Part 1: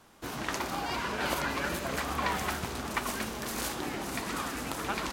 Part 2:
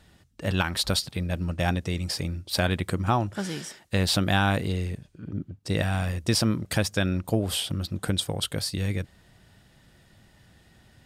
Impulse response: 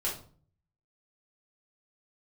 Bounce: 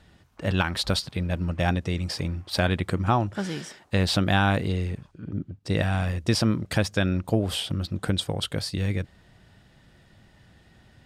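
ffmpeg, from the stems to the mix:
-filter_complex "[0:a]highpass=530,afwtdn=0.0178,volume=-15.5dB[a];[1:a]highshelf=f=7.5k:g=-11.5,volume=1.5dB,asplit=2[b][c];[c]apad=whole_len=225944[d];[a][d]sidechaincompress=threshold=-35dB:ratio=8:attack=16:release=871[e];[e][b]amix=inputs=2:normalize=0"

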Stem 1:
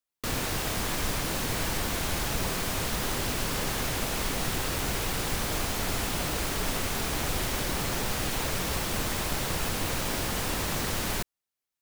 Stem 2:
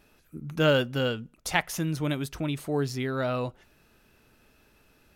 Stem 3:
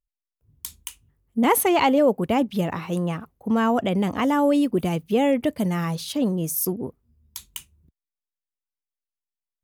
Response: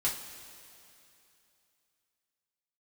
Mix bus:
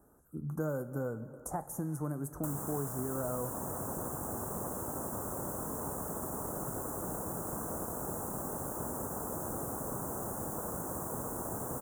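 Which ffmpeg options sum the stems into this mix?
-filter_complex "[0:a]aeval=exprs='0.168*(cos(1*acos(clip(val(0)/0.168,-1,1)))-cos(1*PI/2))+0.0596*(cos(3*acos(clip(val(0)/0.168,-1,1)))-cos(3*PI/2))+0.0841*(cos(8*acos(clip(val(0)/0.168,-1,1)))-cos(8*PI/2))':c=same,adelay=2200,volume=-7.5dB[a];[1:a]volume=-2dB,asplit=2[b][c];[c]volume=-15dB[d];[3:a]atrim=start_sample=2205[e];[d][e]afir=irnorm=-1:irlink=0[f];[a][b][f]amix=inputs=3:normalize=0,highpass=43,acrossover=split=97|870|6100[g][h][i][j];[g]acompressor=threshold=-53dB:ratio=4[k];[h]acompressor=threshold=-35dB:ratio=4[l];[i]acompressor=threshold=-41dB:ratio=4[m];[j]acompressor=threshold=-41dB:ratio=4[n];[k][l][m][n]amix=inputs=4:normalize=0,asuperstop=centerf=3200:order=8:qfactor=0.53"

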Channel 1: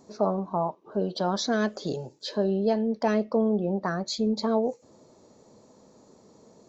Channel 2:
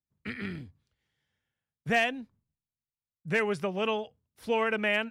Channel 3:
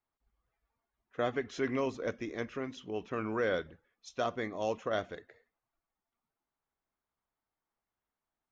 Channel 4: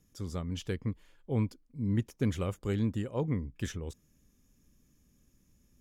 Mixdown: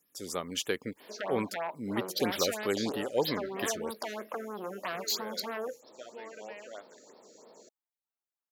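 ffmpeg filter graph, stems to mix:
-filter_complex "[0:a]acompressor=threshold=-27dB:ratio=6,aeval=exprs='0.075*sin(PI/2*1.78*val(0)/0.075)':c=same,adelay=1000,volume=-6dB[a];[1:a]aemphasis=mode=reproduction:type=riaa,adelay=1650,volume=-19dB[b];[2:a]adelay=1800,volume=-11.5dB[c];[3:a]dynaudnorm=f=120:g=3:m=10dB,volume=-1.5dB[d];[a][b][c][d]amix=inputs=4:normalize=0,highpass=440,highshelf=f=8k:g=10,afftfilt=real='re*(1-between(b*sr/1024,870*pow(8000/870,0.5+0.5*sin(2*PI*3.1*pts/sr))/1.41,870*pow(8000/870,0.5+0.5*sin(2*PI*3.1*pts/sr))*1.41))':imag='im*(1-between(b*sr/1024,870*pow(8000/870,0.5+0.5*sin(2*PI*3.1*pts/sr))/1.41,870*pow(8000/870,0.5+0.5*sin(2*PI*3.1*pts/sr))*1.41))':win_size=1024:overlap=0.75"

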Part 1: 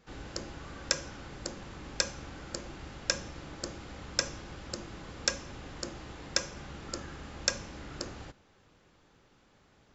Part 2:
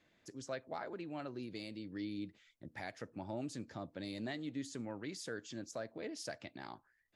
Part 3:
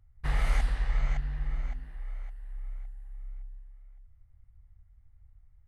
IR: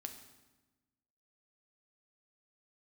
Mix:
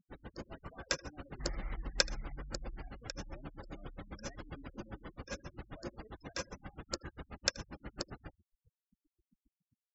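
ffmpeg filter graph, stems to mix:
-filter_complex "[0:a]acrossover=split=6900[a][b];[b]acompressor=threshold=-54dB:ratio=4:attack=1:release=60[c];[a][c]amix=inputs=2:normalize=0,aeval=exprs='val(0)*pow(10,-31*(0.5-0.5*cos(2*PI*7.5*n/s))/20)':c=same,volume=-1.5dB,asplit=3[d][e][f];[e]volume=-15dB[g];[f]volume=-20dB[h];[1:a]asplit=2[i][j];[j]adelay=2.9,afreqshift=0.53[k];[i][k]amix=inputs=2:normalize=1,volume=-16.5dB,asplit=2[l][m];[m]volume=-19dB[n];[2:a]adelay=1150,volume=-18dB,asplit=3[o][p][q];[p]volume=-19.5dB[r];[q]volume=-15.5dB[s];[3:a]atrim=start_sample=2205[t];[g][n][r]amix=inputs=3:normalize=0[u];[u][t]afir=irnorm=-1:irlink=0[v];[h][s]amix=inputs=2:normalize=0,aecho=0:1:79:1[w];[d][l][o][v][w]amix=inputs=5:normalize=0,afftfilt=real='re*gte(hypot(re,im),0.00316)':imag='im*gte(hypot(re,im),0.00316)':win_size=1024:overlap=0.75,dynaudnorm=f=180:g=5:m=3dB"

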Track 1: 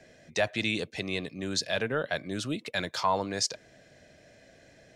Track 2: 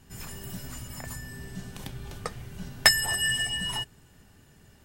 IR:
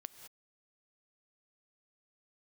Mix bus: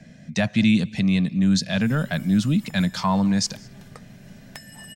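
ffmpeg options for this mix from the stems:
-filter_complex "[0:a]lowshelf=f=280:t=q:w=3:g=11,volume=1.5dB,asplit=2[a][b];[b]volume=-7.5dB[c];[1:a]acompressor=threshold=-32dB:ratio=10,adelay=1700,volume=-7dB[d];[2:a]atrim=start_sample=2205[e];[c][e]afir=irnorm=-1:irlink=0[f];[a][d][f]amix=inputs=3:normalize=0,equalizer=f=64:w=1.8:g=-13"

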